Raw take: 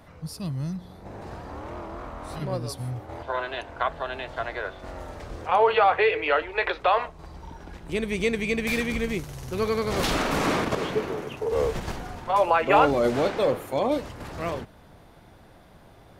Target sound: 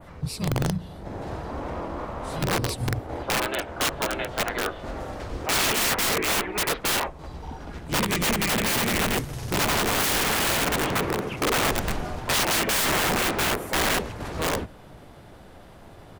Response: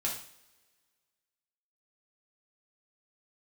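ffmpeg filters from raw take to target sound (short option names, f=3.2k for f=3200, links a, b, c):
-filter_complex "[0:a]asplit=4[a][b][c][d];[b]asetrate=22050,aresample=44100,atempo=2,volume=-8dB[e];[c]asetrate=35002,aresample=44100,atempo=1.25992,volume=-16dB[f];[d]asetrate=37084,aresample=44100,atempo=1.18921,volume=-2dB[g];[a][e][f][g]amix=inputs=4:normalize=0,aeval=exprs='(mod(10*val(0)+1,2)-1)/10':c=same,adynamicequalizer=threshold=0.0112:dfrequency=5100:dqfactor=0.87:tfrequency=5100:tqfactor=0.87:attack=5:release=100:ratio=0.375:range=2:mode=cutabove:tftype=bell,volume=2.5dB"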